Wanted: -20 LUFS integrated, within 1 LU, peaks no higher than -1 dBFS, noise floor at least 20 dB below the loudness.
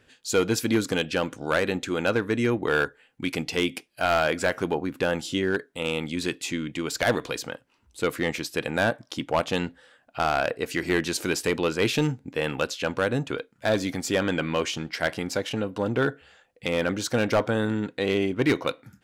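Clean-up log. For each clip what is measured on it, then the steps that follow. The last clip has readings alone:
clipped samples 0.6%; clipping level -15.0 dBFS; loudness -26.5 LUFS; peak level -15.0 dBFS; loudness target -20.0 LUFS
-> clip repair -15 dBFS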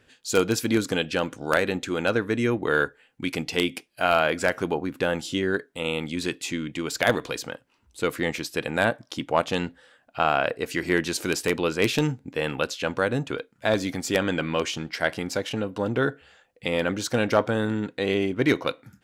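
clipped samples 0.0%; loudness -26.0 LUFS; peak level -6.0 dBFS; loudness target -20.0 LUFS
-> trim +6 dB; peak limiter -1 dBFS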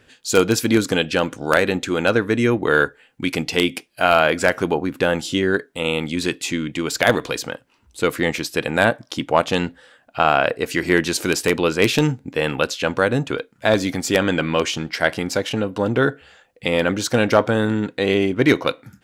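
loudness -20.0 LUFS; peak level -1.0 dBFS; noise floor -59 dBFS

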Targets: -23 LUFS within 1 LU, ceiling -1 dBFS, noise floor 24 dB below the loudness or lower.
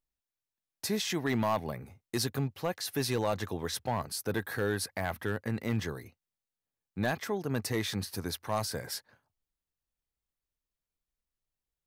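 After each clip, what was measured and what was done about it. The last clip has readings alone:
clipped samples 0.5%; clipping level -22.0 dBFS; loudness -33.5 LUFS; peak level -22.0 dBFS; loudness target -23.0 LUFS
-> clip repair -22 dBFS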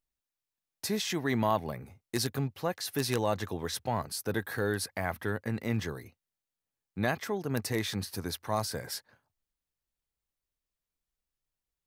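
clipped samples 0.0%; loudness -33.0 LUFS; peak level -13.0 dBFS; loudness target -23.0 LUFS
-> trim +10 dB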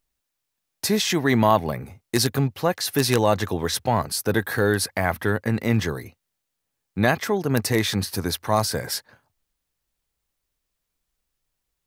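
loudness -23.0 LUFS; peak level -3.0 dBFS; noise floor -80 dBFS

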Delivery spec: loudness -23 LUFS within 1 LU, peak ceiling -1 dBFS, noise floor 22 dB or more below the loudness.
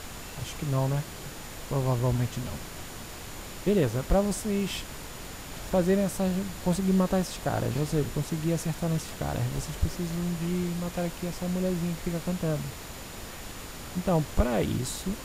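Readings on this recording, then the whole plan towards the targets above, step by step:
steady tone 7 kHz; tone level -53 dBFS; noise floor -41 dBFS; noise floor target -52 dBFS; loudness -29.5 LUFS; peak level -13.5 dBFS; loudness target -23.0 LUFS
-> band-stop 7 kHz, Q 30; noise print and reduce 11 dB; trim +6.5 dB

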